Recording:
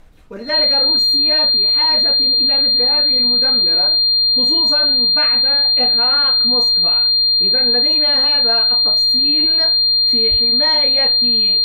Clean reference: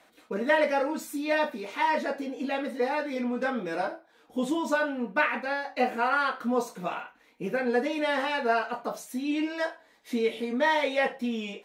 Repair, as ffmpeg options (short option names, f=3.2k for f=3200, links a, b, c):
-filter_complex "[0:a]bandreject=f=4.2k:w=30,asplit=3[a][b][c];[a]afade=t=out:st=10.3:d=0.02[d];[b]highpass=f=140:w=0.5412,highpass=f=140:w=1.3066,afade=t=in:st=10.3:d=0.02,afade=t=out:st=10.42:d=0.02[e];[c]afade=t=in:st=10.42:d=0.02[f];[d][e][f]amix=inputs=3:normalize=0,agate=range=-21dB:threshold=-6dB"